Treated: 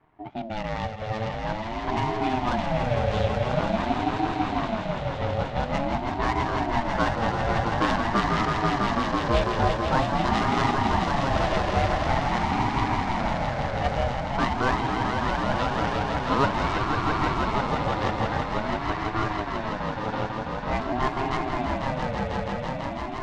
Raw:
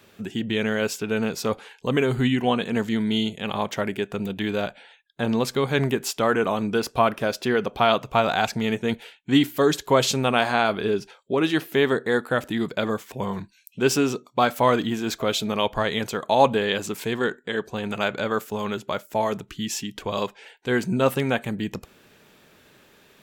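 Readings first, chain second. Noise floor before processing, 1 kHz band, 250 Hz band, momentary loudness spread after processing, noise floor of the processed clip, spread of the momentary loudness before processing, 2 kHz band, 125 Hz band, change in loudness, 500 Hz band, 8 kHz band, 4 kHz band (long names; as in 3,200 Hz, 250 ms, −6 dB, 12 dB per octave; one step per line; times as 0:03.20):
−57 dBFS, +2.5 dB, −3.5 dB, 6 LU, −32 dBFS, 9 LU, −1.5 dB, +2.5 dB, −2.0 dB, −4.5 dB, −11.5 dB, −5.5 dB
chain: gap after every zero crossing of 0.13 ms
low-pass that shuts in the quiet parts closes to 1,300 Hz, open at −16 dBFS
high-frequency loss of the air 120 metres
echo that builds up and dies away 165 ms, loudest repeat 5, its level −6 dB
ring modulator whose carrier an LFO sweeps 430 Hz, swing 25%, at 0.47 Hz
level −2.5 dB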